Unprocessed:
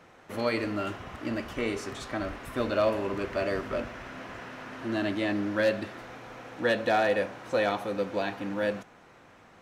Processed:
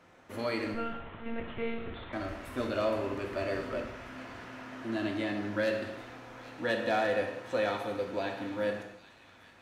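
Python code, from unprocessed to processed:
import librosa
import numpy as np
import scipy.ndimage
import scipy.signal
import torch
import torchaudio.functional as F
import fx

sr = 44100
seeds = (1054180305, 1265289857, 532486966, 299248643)

y = fx.echo_wet_highpass(x, sr, ms=802, feedback_pct=50, hz=2300.0, wet_db=-14.0)
y = fx.lpc_monotone(y, sr, seeds[0], pitch_hz=230.0, order=10, at=(0.74, 2.13))
y = fx.rev_gated(y, sr, seeds[1], gate_ms=310, shape='falling', drr_db=3.5)
y = y * librosa.db_to_amplitude(-5.5)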